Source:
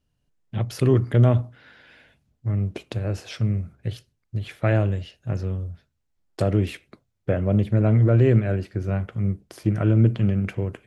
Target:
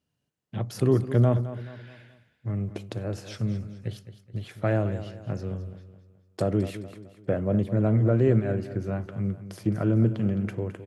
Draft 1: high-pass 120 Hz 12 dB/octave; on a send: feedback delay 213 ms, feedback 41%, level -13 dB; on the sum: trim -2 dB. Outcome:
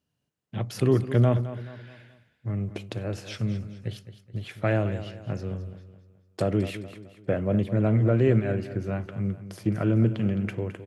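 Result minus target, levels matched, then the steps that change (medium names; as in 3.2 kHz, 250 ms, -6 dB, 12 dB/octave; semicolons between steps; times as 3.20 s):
2 kHz band +3.5 dB
add after high-pass: dynamic bell 2.6 kHz, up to -7 dB, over -50 dBFS, Q 1.2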